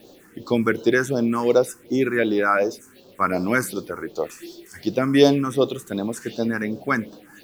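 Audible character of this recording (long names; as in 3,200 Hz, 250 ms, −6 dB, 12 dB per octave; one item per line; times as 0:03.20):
a quantiser's noise floor 10 bits, dither none
phaser sweep stages 4, 2.7 Hz, lowest notch 580–2,000 Hz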